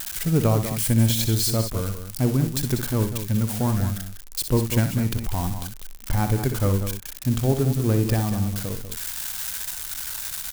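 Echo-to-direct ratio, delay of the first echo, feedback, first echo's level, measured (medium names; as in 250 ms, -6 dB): -6.0 dB, 62 ms, no regular repeats, -9.0 dB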